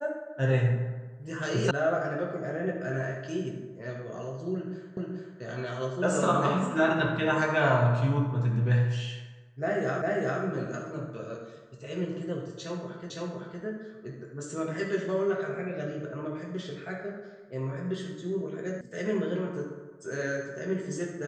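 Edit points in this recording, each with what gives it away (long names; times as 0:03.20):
0:01.71: cut off before it has died away
0:04.97: the same again, the last 0.43 s
0:10.02: the same again, the last 0.4 s
0:13.10: the same again, the last 0.51 s
0:18.81: cut off before it has died away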